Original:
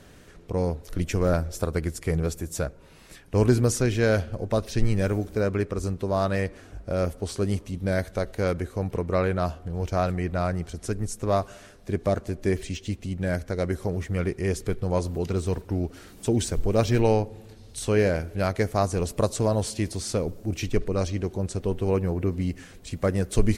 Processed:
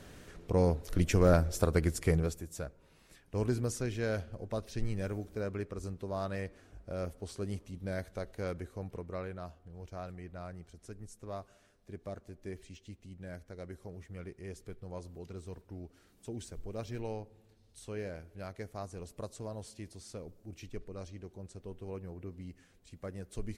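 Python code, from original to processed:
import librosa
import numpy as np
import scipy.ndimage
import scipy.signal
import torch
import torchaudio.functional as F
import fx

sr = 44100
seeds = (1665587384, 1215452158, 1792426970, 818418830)

y = fx.gain(x, sr, db=fx.line((2.08, -1.5), (2.48, -12.0), (8.68, -12.0), (9.48, -18.5)))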